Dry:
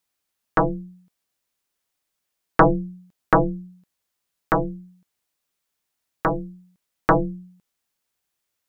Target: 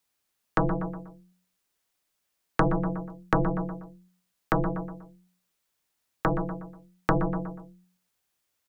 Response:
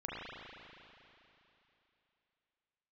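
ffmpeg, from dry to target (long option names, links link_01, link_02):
-filter_complex "[0:a]asplit=2[link_01][link_02];[link_02]adelay=121,lowpass=frequency=2400:poles=1,volume=-10dB,asplit=2[link_03][link_04];[link_04]adelay=121,lowpass=frequency=2400:poles=1,volume=0.4,asplit=2[link_05][link_06];[link_06]adelay=121,lowpass=frequency=2400:poles=1,volume=0.4,asplit=2[link_07][link_08];[link_08]adelay=121,lowpass=frequency=2400:poles=1,volume=0.4[link_09];[link_01][link_03][link_05][link_07][link_09]amix=inputs=5:normalize=0,acrossover=split=250|1600[link_10][link_11][link_12];[link_10]acompressor=threshold=-24dB:ratio=4[link_13];[link_11]acompressor=threshold=-27dB:ratio=4[link_14];[link_12]acompressor=threshold=-41dB:ratio=4[link_15];[link_13][link_14][link_15]amix=inputs=3:normalize=0,volume=1dB"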